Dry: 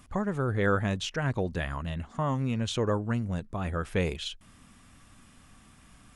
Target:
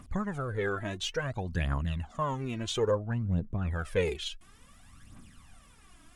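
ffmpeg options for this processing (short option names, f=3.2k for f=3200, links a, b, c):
-filter_complex "[0:a]asettb=1/sr,asplit=3[a][b][c];[a]atrim=end=0.384[d];[b]atrim=start=0.38:end=1.49,asetpts=PTS-STARTPTS,afade=t=in:d=0.004:c=qsin,afade=t=out:st=1.106:d=0.004:c=qsin,acompressor=threshold=-27dB:ratio=2.5[e];[c]atrim=start=1.486[f];[d][e]acrossfade=d=0.004:c1=hsin:c2=qsin[g];[g][f]acrossfade=d=0.004:c1=qsin:c2=hsin,asettb=1/sr,asplit=3[h][i][j];[h]atrim=end=2.914[k];[i]atrim=start=2.91:end=3.71,asetpts=PTS-STARTPTS,afade=t=in:d=0.004:c=qsin,afade=t=out:st=0.796:d=0.004:c=qsin,lowpass=f=1.2k:p=1[l];[j]atrim=start=3.706[m];[k][l]acrossfade=d=0.004:c1=hsin:c2=qsin[n];[n][m]acrossfade=d=0.004:c1=qsin:c2=hsin,aphaser=in_gain=1:out_gain=1:delay=3.2:decay=0.67:speed=0.58:type=triangular,volume=-3.5dB"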